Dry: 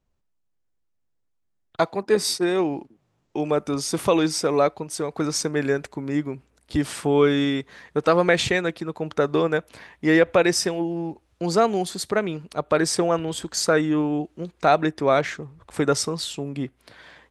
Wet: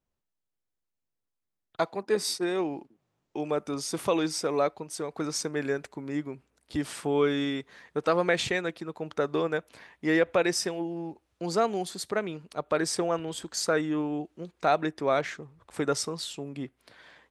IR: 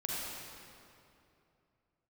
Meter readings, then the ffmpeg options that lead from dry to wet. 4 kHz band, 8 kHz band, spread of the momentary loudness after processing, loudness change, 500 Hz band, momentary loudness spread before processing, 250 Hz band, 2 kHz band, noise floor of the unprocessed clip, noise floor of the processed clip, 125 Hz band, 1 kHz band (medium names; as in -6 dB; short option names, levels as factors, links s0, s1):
-6.0 dB, -6.0 dB, 12 LU, -6.5 dB, -6.5 dB, 12 LU, -7.0 dB, -6.0 dB, -72 dBFS, -84 dBFS, -9.0 dB, -6.0 dB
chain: -af "lowshelf=f=130:g=-7,volume=0.501"